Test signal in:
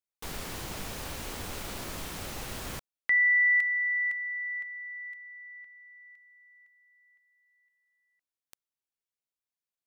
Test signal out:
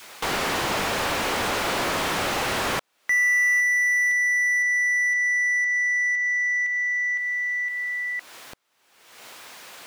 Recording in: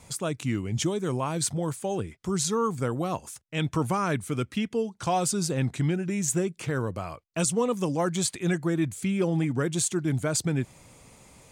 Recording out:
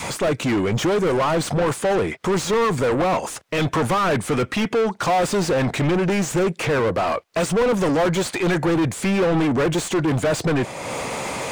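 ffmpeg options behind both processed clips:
ffmpeg -i in.wav -filter_complex "[0:a]adynamicequalizer=threshold=0.00794:dfrequency=550:dqfactor=1.4:tfrequency=550:tqfactor=1.4:attack=5:release=100:ratio=0.375:range=2.5:mode=boostabove:tftype=bell,acompressor=mode=upward:threshold=-29dB:ratio=2.5:attack=0.1:release=401:knee=2.83:detection=peak,asplit=2[link_01][link_02];[link_02]highpass=frequency=720:poles=1,volume=33dB,asoftclip=type=tanh:threshold=-12dB[link_03];[link_01][link_03]amix=inputs=2:normalize=0,lowpass=frequency=1800:poles=1,volume=-6dB" out.wav

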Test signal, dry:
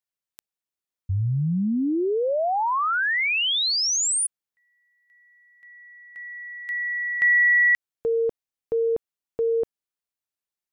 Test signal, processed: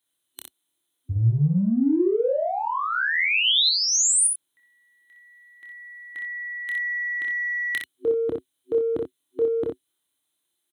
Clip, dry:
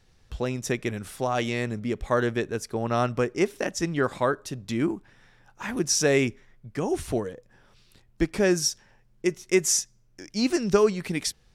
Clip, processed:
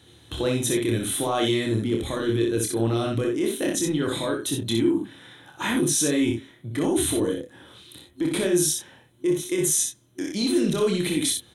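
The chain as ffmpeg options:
ffmpeg -i in.wav -filter_complex "[0:a]highpass=frequency=75:width=0.5412,highpass=frequency=75:width=1.3066,alimiter=limit=-18.5dB:level=0:latency=1:release=16,superequalizer=6b=3.16:13b=2.82:14b=0.398:16b=2.82,areverse,acompressor=threshold=-29dB:ratio=6:attack=2.9:release=34:knee=6:detection=peak,areverse,asplit=2[link_01][link_02];[link_02]adelay=26,volume=-6dB[link_03];[link_01][link_03]amix=inputs=2:normalize=0,adynamicequalizer=threshold=0.00501:dfrequency=960:dqfactor=0.78:tfrequency=960:tqfactor=0.78:attack=5:release=100:ratio=0.438:range=3.5:mode=cutabove:tftype=bell,aecho=1:1:28|62:0.355|0.631,volume=7dB" out.wav

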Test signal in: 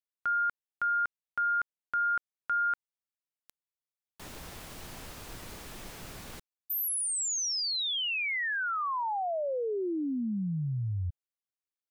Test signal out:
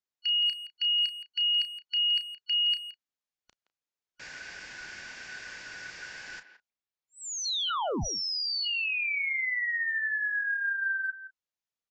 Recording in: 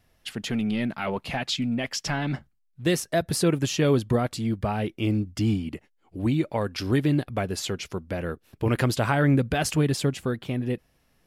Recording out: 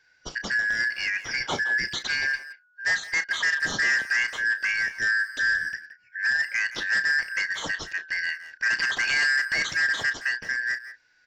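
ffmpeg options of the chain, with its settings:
ffmpeg -i in.wav -filter_complex "[0:a]afftfilt=real='real(if(lt(b,272),68*(eq(floor(b/68),0)*2+eq(floor(b/68),1)*0+eq(floor(b/68),2)*3+eq(floor(b/68),3)*1)+mod(b,68),b),0)':imag='imag(if(lt(b,272),68*(eq(floor(b/68),0)*2+eq(floor(b/68),1)*0+eq(floor(b/68),2)*3+eq(floor(b/68),3)*1)+mod(b,68),b),0)':win_size=2048:overlap=0.75,acrossover=split=5900[link_01][link_02];[link_02]acompressor=threshold=-46dB:ratio=4:attack=1:release=60[link_03];[link_01][link_03]amix=inputs=2:normalize=0,aresample=16000,asoftclip=type=hard:threshold=-21.5dB,aresample=44100,asplit=2[link_04][link_05];[link_05]adelay=33,volume=-11.5dB[link_06];[link_04][link_06]amix=inputs=2:normalize=0,asplit=2[link_07][link_08];[link_08]adelay=170,highpass=300,lowpass=3400,asoftclip=type=hard:threshold=-27dB,volume=-12dB[link_09];[link_07][link_09]amix=inputs=2:normalize=0,volume=1dB" out.wav

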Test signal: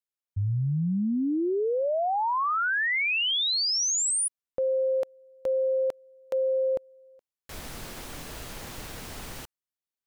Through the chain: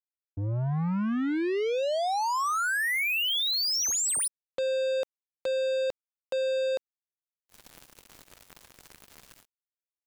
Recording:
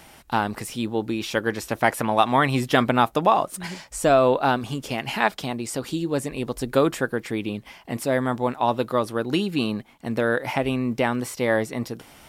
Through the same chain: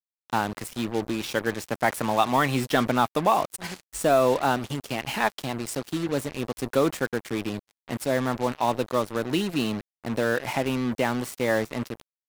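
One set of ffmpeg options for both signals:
ffmpeg -i in.wav -filter_complex "[0:a]acrossover=split=100|7100[link_01][link_02][link_03];[link_01]alimiter=level_in=16dB:limit=-24dB:level=0:latency=1:release=79,volume=-16dB[link_04];[link_04][link_02][link_03]amix=inputs=3:normalize=0,acrusher=bits=4:mix=0:aa=0.5,asoftclip=type=tanh:threshold=-6dB,volume=-2dB" out.wav

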